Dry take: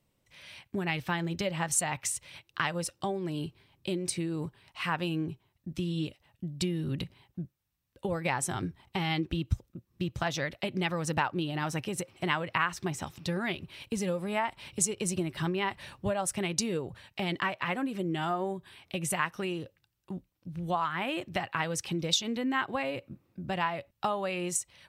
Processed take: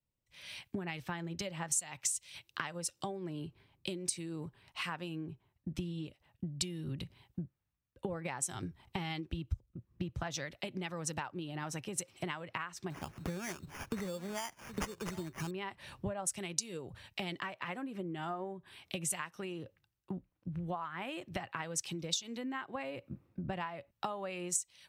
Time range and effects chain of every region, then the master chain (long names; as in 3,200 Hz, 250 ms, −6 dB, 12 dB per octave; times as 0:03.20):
0:12.90–0:15.51: single-tap delay 770 ms −18 dB + sample-rate reduction 4,000 Hz
whole clip: dynamic equaliser 7,000 Hz, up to +6 dB, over −50 dBFS, Q 1.4; downward compressor 16 to 1, threshold −41 dBFS; multiband upward and downward expander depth 70%; level +5 dB